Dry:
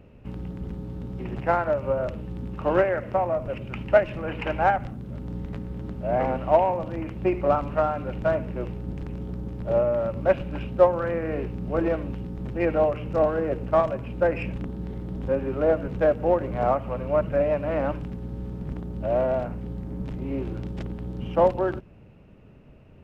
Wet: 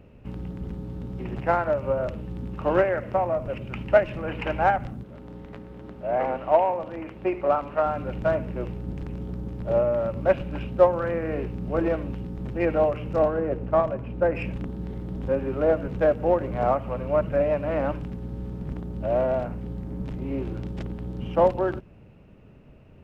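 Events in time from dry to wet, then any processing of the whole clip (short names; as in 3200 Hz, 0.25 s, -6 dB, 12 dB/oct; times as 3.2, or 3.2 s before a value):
5.03–7.86 tone controls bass -11 dB, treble -6 dB
13.28–14.35 high shelf 2800 Hz -10.5 dB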